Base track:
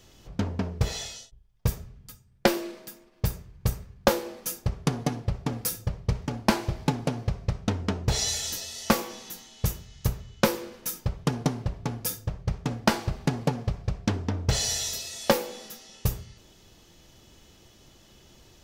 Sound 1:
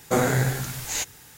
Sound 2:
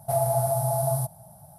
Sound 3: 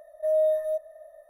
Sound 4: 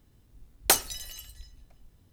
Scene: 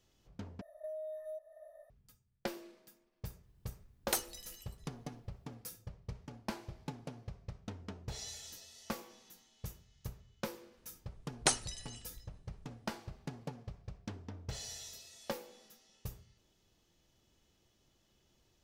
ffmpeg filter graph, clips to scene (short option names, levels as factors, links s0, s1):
-filter_complex "[4:a]asplit=2[s0][s1];[0:a]volume=0.126[s2];[3:a]acompressor=threshold=0.02:ratio=16:attack=11:release=302:knee=6:detection=rms[s3];[s1]aresample=22050,aresample=44100[s4];[s2]asplit=2[s5][s6];[s5]atrim=end=0.614[s7];[s3]atrim=end=1.29,asetpts=PTS-STARTPTS,volume=0.473[s8];[s6]atrim=start=1.896[s9];[s0]atrim=end=2.12,asetpts=PTS-STARTPTS,volume=0.237,afade=t=in:d=0.004:c=hsin,afade=t=out:st=2.116:d=0.004:c=hsin,adelay=3430[s10];[s4]atrim=end=2.12,asetpts=PTS-STARTPTS,volume=0.447,afade=t=in:d=0.004:c=hsin,afade=t=out:st=2.116:d=0.004:c=hsin,adelay=10770[s11];[s7][s8]acrossfade=d=0.004:c1=hsin:c2=hsin[s12];[s12][s9]acrossfade=d=0.004:c1=hsin:c2=hsin[s13];[s13][s10][s11]amix=inputs=3:normalize=0"